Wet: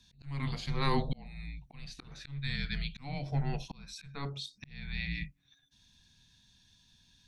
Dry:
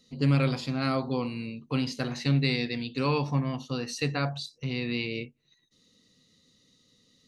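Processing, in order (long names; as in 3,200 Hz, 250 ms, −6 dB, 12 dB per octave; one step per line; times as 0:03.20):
frequency shifter −280 Hz
volume swells 626 ms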